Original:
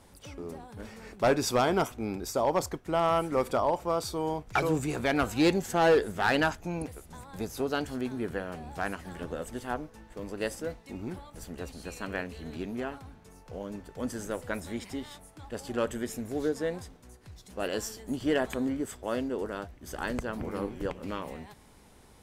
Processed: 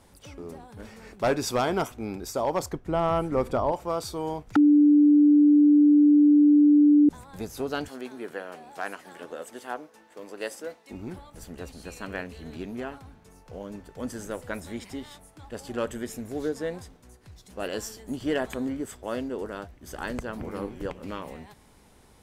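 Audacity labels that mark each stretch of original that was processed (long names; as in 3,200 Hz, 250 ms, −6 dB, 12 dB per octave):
2.730000	3.720000	spectral tilt −2 dB per octave
4.560000	7.090000	beep over 294 Hz −13.5 dBFS
7.880000	10.910000	high-pass filter 350 Hz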